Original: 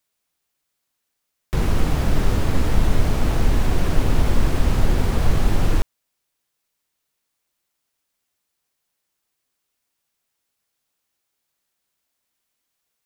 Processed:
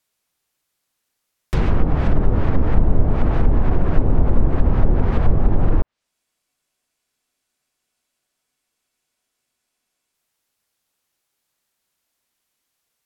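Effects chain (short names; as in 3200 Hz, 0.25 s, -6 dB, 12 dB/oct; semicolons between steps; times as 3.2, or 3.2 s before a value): treble ducked by the level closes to 770 Hz, closed at -10.5 dBFS; spectral freeze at 6.14, 3.99 s; gain +2.5 dB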